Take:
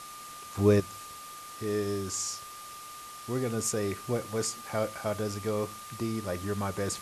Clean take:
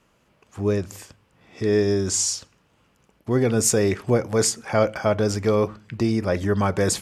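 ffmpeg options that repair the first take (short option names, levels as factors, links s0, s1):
-af "bandreject=f=1200:w=30,afwtdn=0.005,asetnsamples=n=441:p=0,asendcmd='0.8 volume volume 11dB',volume=1"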